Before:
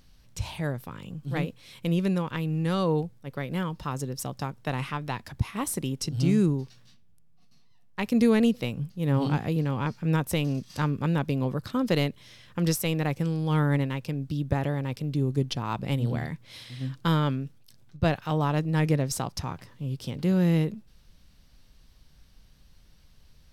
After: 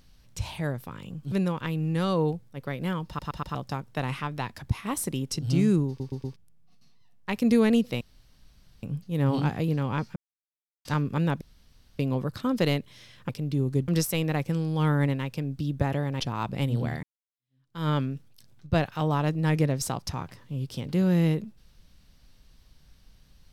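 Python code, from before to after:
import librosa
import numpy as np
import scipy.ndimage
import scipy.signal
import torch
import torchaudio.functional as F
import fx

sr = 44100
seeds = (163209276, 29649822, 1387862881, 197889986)

y = fx.edit(x, sr, fx.cut(start_s=1.32, length_s=0.7),
    fx.stutter_over(start_s=3.77, slice_s=0.12, count=4),
    fx.stutter_over(start_s=6.58, slice_s=0.12, count=4),
    fx.insert_room_tone(at_s=8.71, length_s=0.82),
    fx.silence(start_s=10.04, length_s=0.69),
    fx.insert_room_tone(at_s=11.29, length_s=0.58),
    fx.move(start_s=14.91, length_s=0.59, to_s=12.59),
    fx.fade_in_span(start_s=16.33, length_s=0.86, curve='exp'), tone=tone)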